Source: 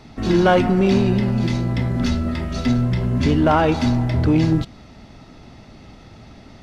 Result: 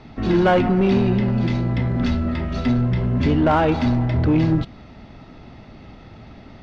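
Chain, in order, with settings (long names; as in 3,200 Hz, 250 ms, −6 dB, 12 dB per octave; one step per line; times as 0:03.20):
low-pass filter 3,500 Hz 12 dB per octave
in parallel at −3 dB: soft clipping −19 dBFS, distortion −9 dB
on the sum: level −3.5 dB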